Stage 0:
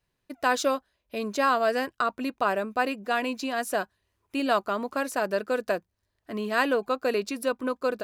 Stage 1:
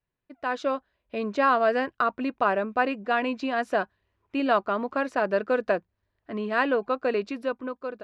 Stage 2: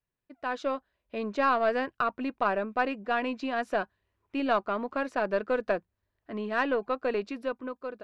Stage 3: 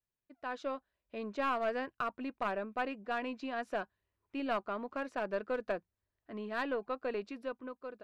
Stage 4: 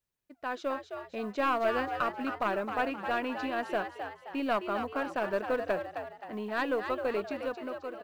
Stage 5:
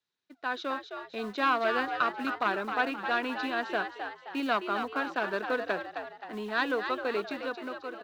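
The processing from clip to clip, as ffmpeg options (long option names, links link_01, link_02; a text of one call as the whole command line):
ffmpeg -i in.wav -af "dynaudnorm=framelen=120:gausssize=11:maxgain=11.5dB,lowpass=2800,volume=-7.5dB" out.wav
ffmpeg -i in.wav -af "aeval=exprs='0.335*(cos(1*acos(clip(val(0)/0.335,-1,1)))-cos(1*PI/2))+0.015*(cos(4*acos(clip(val(0)/0.335,-1,1)))-cos(4*PI/2))':channel_layout=same,volume=-3.5dB" out.wav
ffmpeg -i in.wav -af "aeval=exprs='clip(val(0),-1,0.0891)':channel_layout=same,volume=-7.5dB" out.wav
ffmpeg -i in.wav -filter_complex "[0:a]acrusher=bits=9:mode=log:mix=0:aa=0.000001,asplit=6[link_01][link_02][link_03][link_04][link_05][link_06];[link_02]adelay=263,afreqshift=83,volume=-7.5dB[link_07];[link_03]adelay=526,afreqshift=166,volume=-14.6dB[link_08];[link_04]adelay=789,afreqshift=249,volume=-21.8dB[link_09];[link_05]adelay=1052,afreqshift=332,volume=-28.9dB[link_10];[link_06]adelay=1315,afreqshift=415,volume=-36dB[link_11];[link_01][link_07][link_08][link_09][link_10][link_11]amix=inputs=6:normalize=0,volume=4.5dB" out.wav
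ffmpeg -i in.wav -filter_complex "[0:a]highpass=210,equalizer=frequency=580:width_type=q:width=4:gain=-7,equalizer=frequency=1500:width_type=q:width=4:gain=4,equalizer=frequency=3800:width_type=q:width=4:gain=9,lowpass=frequency=6200:width=0.5412,lowpass=frequency=6200:width=1.3066,acrossover=split=270|2500[link_01][link_02][link_03];[link_01]acrusher=bits=3:mode=log:mix=0:aa=0.000001[link_04];[link_04][link_02][link_03]amix=inputs=3:normalize=0,volume=2dB" out.wav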